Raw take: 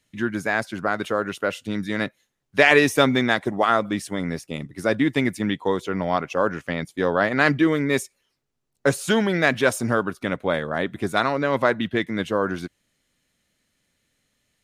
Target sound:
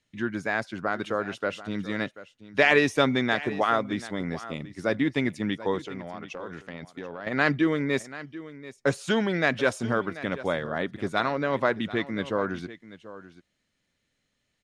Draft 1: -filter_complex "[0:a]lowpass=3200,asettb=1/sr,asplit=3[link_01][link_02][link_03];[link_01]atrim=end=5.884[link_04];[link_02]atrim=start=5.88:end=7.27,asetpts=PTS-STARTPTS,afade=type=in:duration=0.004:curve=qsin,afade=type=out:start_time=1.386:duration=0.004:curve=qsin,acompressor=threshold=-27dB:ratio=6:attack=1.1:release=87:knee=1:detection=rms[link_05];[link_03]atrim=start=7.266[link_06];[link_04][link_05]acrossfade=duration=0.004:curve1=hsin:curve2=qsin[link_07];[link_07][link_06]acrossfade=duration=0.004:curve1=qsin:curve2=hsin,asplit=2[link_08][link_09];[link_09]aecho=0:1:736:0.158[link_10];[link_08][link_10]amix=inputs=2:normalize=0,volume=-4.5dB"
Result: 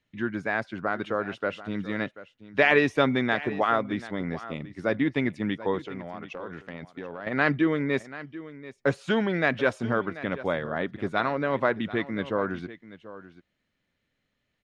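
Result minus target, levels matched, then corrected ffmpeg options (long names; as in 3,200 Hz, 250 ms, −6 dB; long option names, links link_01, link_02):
8,000 Hz band −10.5 dB
-filter_complex "[0:a]lowpass=6500,asettb=1/sr,asplit=3[link_01][link_02][link_03];[link_01]atrim=end=5.884[link_04];[link_02]atrim=start=5.88:end=7.27,asetpts=PTS-STARTPTS,afade=type=in:duration=0.004:curve=qsin,afade=type=out:start_time=1.386:duration=0.004:curve=qsin,acompressor=threshold=-27dB:ratio=6:attack=1.1:release=87:knee=1:detection=rms[link_05];[link_03]atrim=start=7.266[link_06];[link_04][link_05]acrossfade=duration=0.004:curve1=hsin:curve2=qsin[link_07];[link_07][link_06]acrossfade=duration=0.004:curve1=qsin:curve2=hsin,asplit=2[link_08][link_09];[link_09]aecho=0:1:736:0.158[link_10];[link_08][link_10]amix=inputs=2:normalize=0,volume=-4.5dB"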